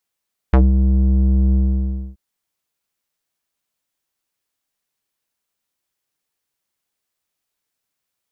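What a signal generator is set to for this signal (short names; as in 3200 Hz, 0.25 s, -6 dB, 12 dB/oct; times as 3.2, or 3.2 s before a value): synth note square C2 12 dB/oct, low-pass 210 Hz, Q 1.2, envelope 3.5 oct, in 0.09 s, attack 5.3 ms, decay 0.18 s, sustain -5 dB, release 0.62 s, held 1.01 s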